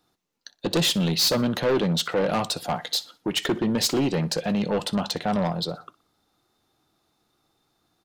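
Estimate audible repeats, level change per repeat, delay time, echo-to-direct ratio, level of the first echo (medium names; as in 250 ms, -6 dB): 2, -8.5 dB, 61 ms, -20.5 dB, -21.0 dB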